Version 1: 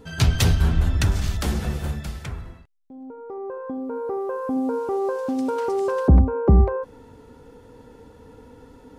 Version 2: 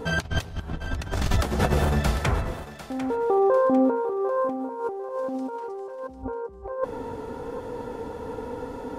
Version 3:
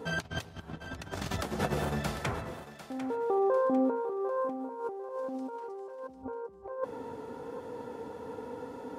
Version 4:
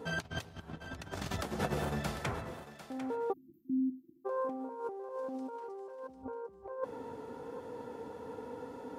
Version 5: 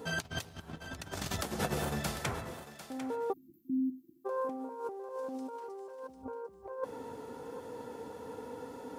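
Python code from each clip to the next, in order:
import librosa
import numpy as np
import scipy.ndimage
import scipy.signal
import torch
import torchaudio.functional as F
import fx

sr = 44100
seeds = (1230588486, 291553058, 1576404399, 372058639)

y1 = fx.peak_eq(x, sr, hz=730.0, db=9.0, octaves=2.4)
y1 = fx.over_compress(y1, sr, threshold_db=-25.0, ratio=-0.5)
y1 = fx.echo_thinned(y1, sr, ms=748, feedback_pct=35, hz=340.0, wet_db=-12.0)
y2 = scipy.signal.sosfilt(scipy.signal.butter(2, 120.0, 'highpass', fs=sr, output='sos'), y1)
y2 = F.gain(torch.from_numpy(y2), -7.0).numpy()
y3 = fx.spec_erase(y2, sr, start_s=3.33, length_s=0.93, low_hz=360.0, high_hz=12000.0)
y3 = F.gain(torch.from_numpy(y3), -3.0).numpy()
y4 = fx.high_shelf(y3, sr, hz=4400.0, db=9.5)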